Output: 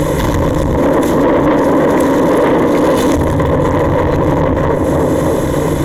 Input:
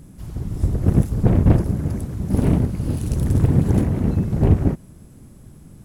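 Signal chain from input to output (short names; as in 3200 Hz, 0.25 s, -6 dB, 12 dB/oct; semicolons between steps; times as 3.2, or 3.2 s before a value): minimum comb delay 2 ms; 0.77–3.16 resonant low shelf 160 Hz -11 dB, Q 1.5; tape echo 0.303 s, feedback 60%, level -16.5 dB, low-pass 1300 Hz; compressor, threshold -29 dBFS, peak gain reduction 17.5 dB; soft clip -36 dBFS, distortion -7 dB; ripple EQ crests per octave 1.1, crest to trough 9 dB; overdrive pedal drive 22 dB, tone 1500 Hz, clips at -18 dBFS; maximiser +30 dB; gain -3.5 dB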